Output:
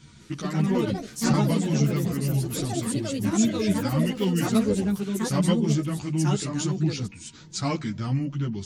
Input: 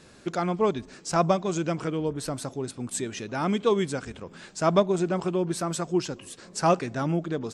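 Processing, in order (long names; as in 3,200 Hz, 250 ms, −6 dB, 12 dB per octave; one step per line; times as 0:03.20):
steady tone 1,100 Hz −58 dBFS
speed change −13%
graphic EQ with 10 bands 125 Hz +8 dB, 500 Hz −12 dB, 1,000 Hz −8 dB
delay with pitch and tempo change per echo 198 ms, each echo +4 semitones, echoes 3
string-ensemble chorus
level +4.5 dB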